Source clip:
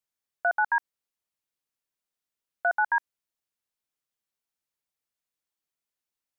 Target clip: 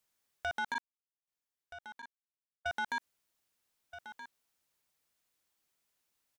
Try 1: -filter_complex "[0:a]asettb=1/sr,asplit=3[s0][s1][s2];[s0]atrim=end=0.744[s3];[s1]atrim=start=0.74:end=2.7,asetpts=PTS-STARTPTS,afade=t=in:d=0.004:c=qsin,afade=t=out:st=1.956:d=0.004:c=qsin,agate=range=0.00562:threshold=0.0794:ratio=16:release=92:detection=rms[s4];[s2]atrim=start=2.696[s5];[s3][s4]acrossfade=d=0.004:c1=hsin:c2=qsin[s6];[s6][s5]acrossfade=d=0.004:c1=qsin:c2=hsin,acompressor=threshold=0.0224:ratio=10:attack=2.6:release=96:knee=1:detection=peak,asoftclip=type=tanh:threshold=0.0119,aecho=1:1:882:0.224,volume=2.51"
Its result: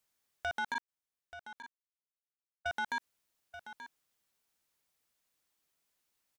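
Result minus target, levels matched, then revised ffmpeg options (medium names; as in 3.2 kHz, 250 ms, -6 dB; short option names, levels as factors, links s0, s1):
echo 393 ms early
-filter_complex "[0:a]asettb=1/sr,asplit=3[s0][s1][s2];[s0]atrim=end=0.744[s3];[s1]atrim=start=0.74:end=2.7,asetpts=PTS-STARTPTS,afade=t=in:d=0.004:c=qsin,afade=t=out:st=1.956:d=0.004:c=qsin,agate=range=0.00562:threshold=0.0794:ratio=16:release=92:detection=rms[s4];[s2]atrim=start=2.696[s5];[s3][s4]acrossfade=d=0.004:c1=hsin:c2=qsin[s6];[s6][s5]acrossfade=d=0.004:c1=qsin:c2=hsin,acompressor=threshold=0.0224:ratio=10:attack=2.6:release=96:knee=1:detection=peak,asoftclip=type=tanh:threshold=0.0119,aecho=1:1:1275:0.224,volume=2.51"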